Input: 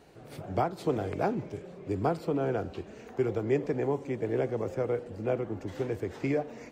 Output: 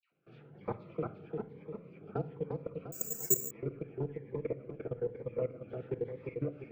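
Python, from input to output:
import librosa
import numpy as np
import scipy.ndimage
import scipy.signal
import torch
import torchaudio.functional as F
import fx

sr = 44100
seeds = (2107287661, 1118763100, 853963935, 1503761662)

p1 = fx.cabinet(x, sr, low_hz=110.0, low_slope=12, high_hz=3200.0, hz=(140.0, 220.0, 460.0, 700.0, 1300.0, 2400.0), db=(10, 4, 7, -5, 6, 6))
p2 = fx.rider(p1, sr, range_db=3, speed_s=0.5)
p3 = fx.dispersion(p2, sr, late='lows', ms=121.0, hz=1400.0)
p4 = fx.level_steps(p3, sr, step_db=24)
p5 = p4 + fx.echo_feedback(p4, sr, ms=349, feedback_pct=46, wet_db=-4, dry=0)
p6 = fx.room_shoebox(p5, sr, seeds[0], volume_m3=2200.0, walls='furnished', distance_m=0.76)
p7 = fx.resample_bad(p6, sr, factor=6, down='none', up='zero_stuff', at=(2.92, 3.51))
p8 = fx.notch_cascade(p7, sr, direction='rising', hz=1.1)
y = p8 * librosa.db_to_amplitude(-7.0)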